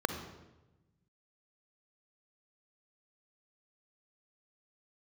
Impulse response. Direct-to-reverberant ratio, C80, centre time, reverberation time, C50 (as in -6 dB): 7.5 dB, 10.0 dB, 20 ms, 1.0 s, 8.0 dB